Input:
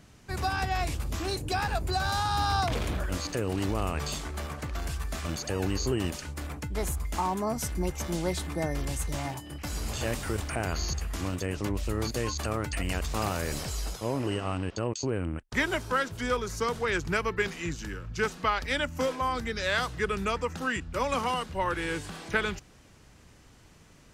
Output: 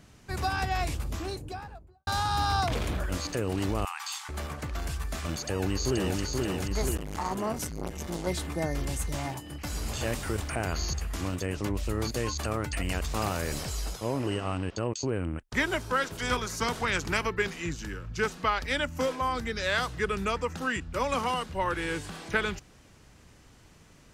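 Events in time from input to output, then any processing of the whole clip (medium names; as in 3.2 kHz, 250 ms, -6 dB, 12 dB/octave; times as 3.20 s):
0.87–2.07 s: studio fade out
3.85–4.29 s: brick-wall FIR high-pass 750 Hz
5.36–6.19 s: echo throw 480 ms, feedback 65%, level -2.5 dB
6.97–8.27 s: transformer saturation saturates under 660 Hz
16.02–17.26 s: spectral peaks clipped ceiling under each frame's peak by 13 dB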